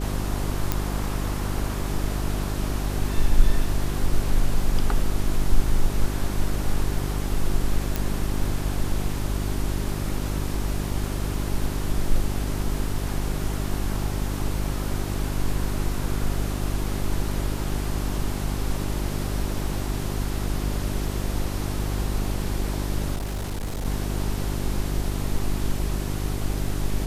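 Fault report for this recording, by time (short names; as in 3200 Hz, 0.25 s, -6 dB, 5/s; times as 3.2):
hum 50 Hz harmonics 8 -28 dBFS
0.72 pop -7 dBFS
7.96 pop
23.16–23.86 clipped -25.5 dBFS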